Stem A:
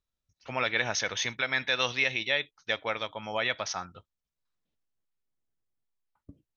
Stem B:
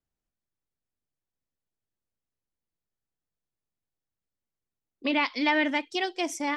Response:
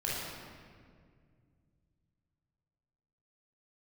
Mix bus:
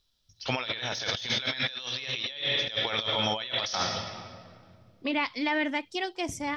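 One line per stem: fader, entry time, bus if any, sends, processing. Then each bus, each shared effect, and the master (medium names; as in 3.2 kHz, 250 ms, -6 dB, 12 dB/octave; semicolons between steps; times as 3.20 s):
+1.5 dB, 0.00 s, send -12 dB, de-esser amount 70%; high-order bell 4.1 kHz +12.5 dB 1.1 oct
-9.0 dB, 0.00 s, no send, none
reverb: on, RT60 2.0 s, pre-delay 19 ms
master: compressor with a negative ratio -32 dBFS, ratio -1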